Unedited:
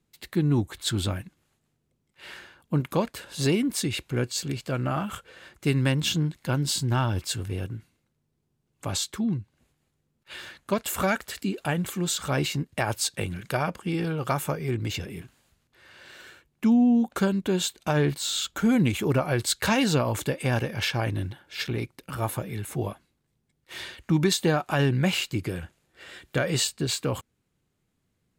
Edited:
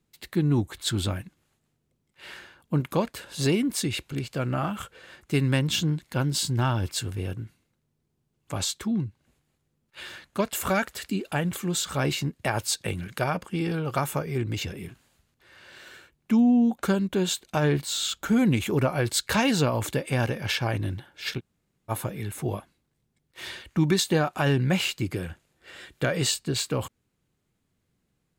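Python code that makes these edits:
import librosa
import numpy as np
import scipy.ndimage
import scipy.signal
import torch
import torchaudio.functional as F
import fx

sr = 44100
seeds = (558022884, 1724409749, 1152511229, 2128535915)

y = fx.edit(x, sr, fx.cut(start_s=4.12, length_s=0.33),
    fx.room_tone_fill(start_s=21.72, length_s=0.51, crossfade_s=0.04), tone=tone)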